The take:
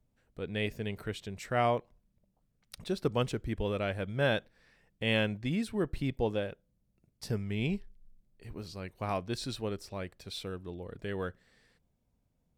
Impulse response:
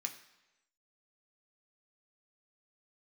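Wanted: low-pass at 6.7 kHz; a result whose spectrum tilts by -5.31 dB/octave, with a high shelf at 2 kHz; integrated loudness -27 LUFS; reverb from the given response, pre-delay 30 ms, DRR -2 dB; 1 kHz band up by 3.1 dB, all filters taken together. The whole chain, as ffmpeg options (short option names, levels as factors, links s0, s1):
-filter_complex "[0:a]lowpass=6700,equalizer=f=1000:t=o:g=6.5,highshelf=f=2000:g=-8,asplit=2[s0][s1];[1:a]atrim=start_sample=2205,adelay=30[s2];[s1][s2]afir=irnorm=-1:irlink=0,volume=1.41[s3];[s0][s3]amix=inputs=2:normalize=0,volume=1.68"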